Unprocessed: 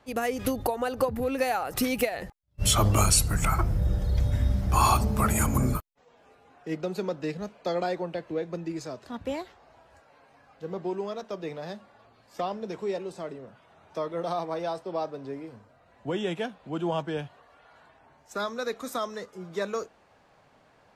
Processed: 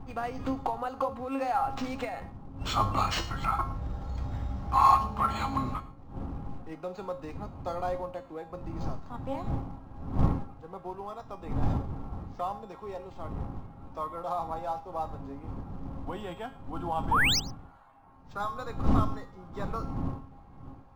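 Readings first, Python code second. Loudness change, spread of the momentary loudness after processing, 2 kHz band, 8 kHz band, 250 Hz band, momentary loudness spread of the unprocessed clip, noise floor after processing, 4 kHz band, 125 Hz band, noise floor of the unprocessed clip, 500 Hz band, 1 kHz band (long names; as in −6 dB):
−3.5 dB, 14 LU, +0.5 dB, −13.0 dB, −3.5 dB, 17 LU, −51 dBFS, −1.5 dB, −4.5 dB, −61 dBFS, −7.0 dB, +2.0 dB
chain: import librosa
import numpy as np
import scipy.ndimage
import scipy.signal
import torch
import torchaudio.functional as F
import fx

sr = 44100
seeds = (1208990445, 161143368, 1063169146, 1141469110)

p1 = fx.dmg_wind(x, sr, seeds[0], corner_hz=150.0, level_db=-27.0)
p2 = fx.band_shelf(p1, sr, hz=980.0, db=10.5, octaves=1.1)
p3 = fx.comb_fb(p2, sr, f0_hz=270.0, decay_s=0.4, harmonics='all', damping=0.0, mix_pct=80)
p4 = fx.quant_float(p3, sr, bits=2)
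p5 = p3 + F.gain(torch.from_numpy(p4), -10.5).numpy()
p6 = fx.spec_paint(p5, sr, seeds[1], shape='rise', start_s=17.11, length_s=0.29, low_hz=820.0, high_hz=6400.0, level_db=-23.0)
p7 = p6 + fx.echo_single(p6, sr, ms=110, db=-20.5, dry=0)
y = np.interp(np.arange(len(p7)), np.arange(len(p7))[::4], p7[::4])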